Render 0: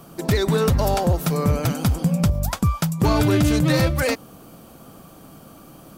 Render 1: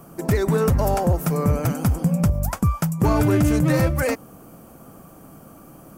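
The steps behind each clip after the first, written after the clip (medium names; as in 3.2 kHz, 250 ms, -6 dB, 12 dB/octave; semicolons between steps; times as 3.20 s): peaking EQ 3.8 kHz -12.5 dB 0.88 oct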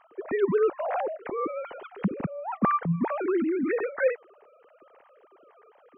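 formants replaced by sine waves; trim -8 dB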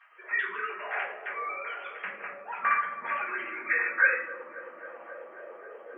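high-pass sweep 1.8 kHz -> 380 Hz, 3.85–5.77 s; feedback echo behind a low-pass 269 ms, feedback 81%, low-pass 650 Hz, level -6 dB; simulated room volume 59 m³, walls mixed, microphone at 1.7 m; trim -4 dB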